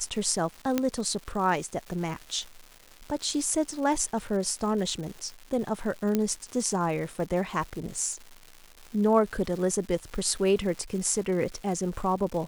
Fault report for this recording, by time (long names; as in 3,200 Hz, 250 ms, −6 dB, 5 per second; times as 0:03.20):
surface crackle 360 per second −37 dBFS
0:00.78: click −11 dBFS
0:06.15: click −12 dBFS